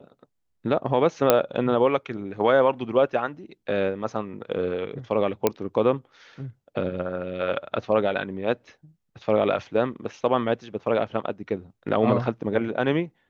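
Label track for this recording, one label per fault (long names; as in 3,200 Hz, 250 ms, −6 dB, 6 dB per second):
1.300000	1.300000	click −2 dBFS
5.470000	5.470000	click −6 dBFS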